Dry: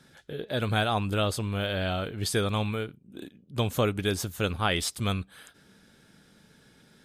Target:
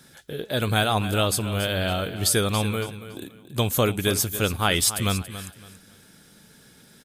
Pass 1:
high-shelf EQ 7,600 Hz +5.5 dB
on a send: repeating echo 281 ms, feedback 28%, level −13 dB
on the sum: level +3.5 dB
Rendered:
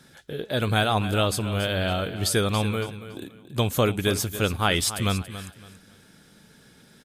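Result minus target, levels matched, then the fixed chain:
8,000 Hz band −3.5 dB
high-shelf EQ 7,600 Hz +14.5 dB
on a send: repeating echo 281 ms, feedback 28%, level −13 dB
on the sum: level +3.5 dB

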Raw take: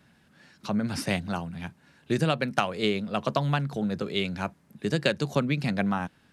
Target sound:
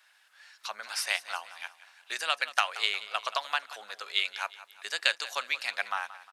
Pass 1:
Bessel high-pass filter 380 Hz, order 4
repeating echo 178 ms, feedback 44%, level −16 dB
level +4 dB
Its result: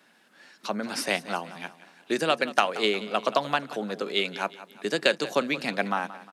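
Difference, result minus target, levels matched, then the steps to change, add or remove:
500 Hz band +12.5 dB
change: Bessel high-pass filter 1,300 Hz, order 4

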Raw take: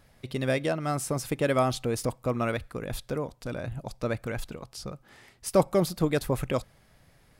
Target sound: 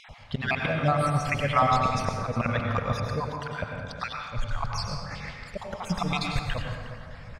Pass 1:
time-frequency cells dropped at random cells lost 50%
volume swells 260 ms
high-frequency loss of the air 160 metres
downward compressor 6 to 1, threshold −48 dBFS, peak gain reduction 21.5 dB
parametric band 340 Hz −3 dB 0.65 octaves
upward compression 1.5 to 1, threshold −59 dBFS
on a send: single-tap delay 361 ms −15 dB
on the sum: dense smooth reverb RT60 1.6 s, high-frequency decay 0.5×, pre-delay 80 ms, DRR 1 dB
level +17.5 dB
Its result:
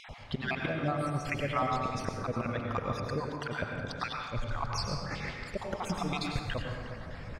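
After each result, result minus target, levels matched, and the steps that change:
downward compressor: peak gain reduction +10 dB; 250 Hz band +2.5 dB
change: downward compressor 6 to 1, threshold −36 dBFS, peak gain reduction 11.5 dB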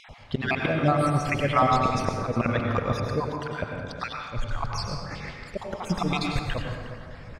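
250 Hz band +2.5 dB
change: parametric band 340 Hz −15 dB 0.65 octaves

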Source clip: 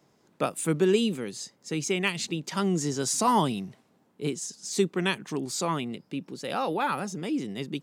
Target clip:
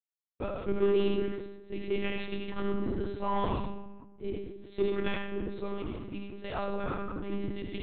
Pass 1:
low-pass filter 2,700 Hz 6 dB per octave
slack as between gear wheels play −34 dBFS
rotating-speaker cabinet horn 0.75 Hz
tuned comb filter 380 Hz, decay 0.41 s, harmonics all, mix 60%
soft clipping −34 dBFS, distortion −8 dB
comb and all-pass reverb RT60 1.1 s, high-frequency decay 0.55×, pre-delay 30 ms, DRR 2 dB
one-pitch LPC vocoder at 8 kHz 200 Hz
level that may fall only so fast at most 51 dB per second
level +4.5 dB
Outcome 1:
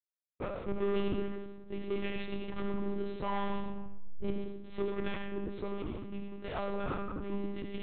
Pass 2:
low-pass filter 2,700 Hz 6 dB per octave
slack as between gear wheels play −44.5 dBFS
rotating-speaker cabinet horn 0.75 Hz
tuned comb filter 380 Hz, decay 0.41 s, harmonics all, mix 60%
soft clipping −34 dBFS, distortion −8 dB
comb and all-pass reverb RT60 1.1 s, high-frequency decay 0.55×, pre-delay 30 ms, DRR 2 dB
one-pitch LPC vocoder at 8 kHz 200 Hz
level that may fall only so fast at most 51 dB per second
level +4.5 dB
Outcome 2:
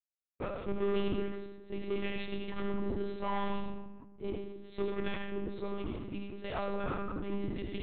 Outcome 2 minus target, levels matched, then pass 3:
soft clipping: distortion +9 dB
low-pass filter 2,700 Hz 6 dB per octave
slack as between gear wheels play −44.5 dBFS
rotating-speaker cabinet horn 0.75 Hz
tuned comb filter 380 Hz, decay 0.41 s, harmonics all, mix 60%
soft clipping −25 dBFS, distortion −16 dB
comb and all-pass reverb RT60 1.1 s, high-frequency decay 0.55×, pre-delay 30 ms, DRR 2 dB
one-pitch LPC vocoder at 8 kHz 200 Hz
level that may fall only so fast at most 51 dB per second
level +4.5 dB

